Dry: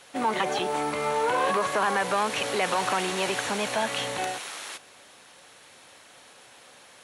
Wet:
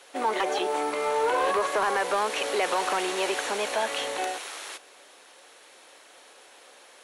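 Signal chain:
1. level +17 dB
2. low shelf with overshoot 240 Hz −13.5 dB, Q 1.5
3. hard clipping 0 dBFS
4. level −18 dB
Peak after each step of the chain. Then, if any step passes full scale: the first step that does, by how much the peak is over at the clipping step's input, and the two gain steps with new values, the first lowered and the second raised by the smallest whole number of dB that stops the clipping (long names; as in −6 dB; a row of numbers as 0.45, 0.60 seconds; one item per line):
+5.0, +5.5, 0.0, −18.0 dBFS
step 1, 5.5 dB
step 1 +11 dB, step 4 −12 dB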